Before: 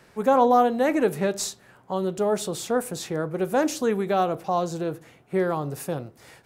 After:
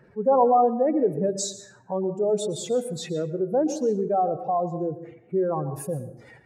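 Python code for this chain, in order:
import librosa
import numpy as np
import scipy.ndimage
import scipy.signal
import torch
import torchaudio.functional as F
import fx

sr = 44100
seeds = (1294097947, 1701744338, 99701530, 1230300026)

y = fx.spec_expand(x, sr, power=2.2)
y = fx.rev_plate(y, sr, seeds[0], rt60_s=0.68, hf_ratio=0.6, predelay_ms=105, drr_db=12.0)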